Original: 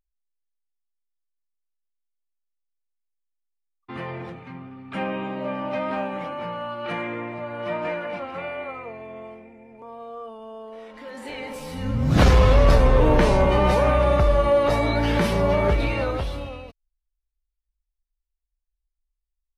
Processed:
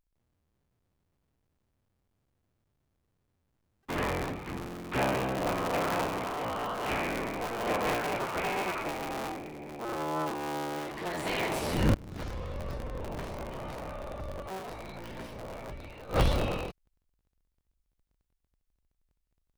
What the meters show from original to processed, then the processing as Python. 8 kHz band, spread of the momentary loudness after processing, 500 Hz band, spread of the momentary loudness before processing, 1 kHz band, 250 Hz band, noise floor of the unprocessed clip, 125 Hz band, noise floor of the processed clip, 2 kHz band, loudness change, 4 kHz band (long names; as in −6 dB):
−1.0 dB, 13 LU, −11.0 dB, 22 LU, −6.5 dB, −8.5 dB, −82 dBFS, −12.5 dB, −80 dBFS, −5.5 dB, −11.5 dB, −5.5 dB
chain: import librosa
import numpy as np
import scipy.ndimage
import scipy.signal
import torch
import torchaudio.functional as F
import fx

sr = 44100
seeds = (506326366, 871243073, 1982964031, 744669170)

y = fx.cycle_switch(x, sr, every=3, mode='inverted')
y = fx.gate_flip(y, sr, shuts_db=-16.0, range_db=-26)
y = fx.rider(y, sr, range_db=5, speed_s=2.0)